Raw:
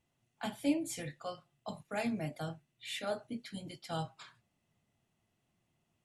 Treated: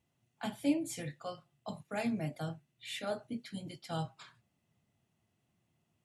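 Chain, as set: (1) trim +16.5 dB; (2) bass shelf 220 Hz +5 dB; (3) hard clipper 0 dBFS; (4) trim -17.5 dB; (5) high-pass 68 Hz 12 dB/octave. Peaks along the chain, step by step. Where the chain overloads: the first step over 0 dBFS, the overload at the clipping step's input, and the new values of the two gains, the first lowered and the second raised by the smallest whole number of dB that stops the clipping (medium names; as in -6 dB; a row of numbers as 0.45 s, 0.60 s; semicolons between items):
-3.5 dBFS, -2.0 dBFS, -2.0 dBFS, -19.5 dBFS, -19.5 dBFS; nothing clips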